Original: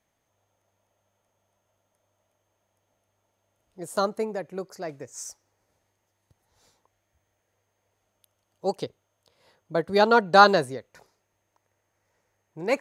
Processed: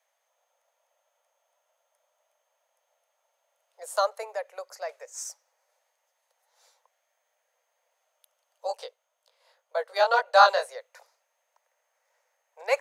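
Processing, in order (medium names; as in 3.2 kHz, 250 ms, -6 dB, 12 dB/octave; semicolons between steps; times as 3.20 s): steep high-pass 500 Hz 72 dB/octave; 8.67–10.69 s: chorus 1.8 Hz, delay 16.5 ms, depth 6.1 ms; trim +1 dB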